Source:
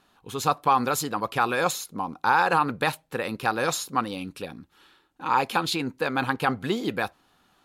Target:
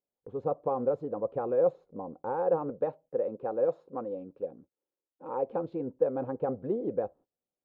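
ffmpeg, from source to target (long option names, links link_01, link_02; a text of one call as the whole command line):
ffmpeg -i in.wav -filter_complex "[0:a]lowpass=frequency=530:width_type=q:width=4.9,agate=range=-24dB:threshold=-44dB:ratio=16:detection=peak,asettb=1/sr,asplit=3[link_01][link_02][link_03];[link_01]atrim=end=2.704[link_04];[link_02]atrim=start=2.7:end=5.47,asetpts=PTS-STARTPTS,afade=type=in:duration=0.004:curve=qsin,afade=type=out:start_time=2.766:duration=0.004:curve=qsin,lowshelf=frequency=140:gain=-11[link_05];[link_03]atrim=start=5.466[link_06];[link_04][link_05]acrossfade=duration=0.004:curve1=hsin:curve2=qsin[link_07];[link_07][link_06]acrossfade=duration=0.004:curve1=qsin:curve2=hsin,volume=-9dB" out.wav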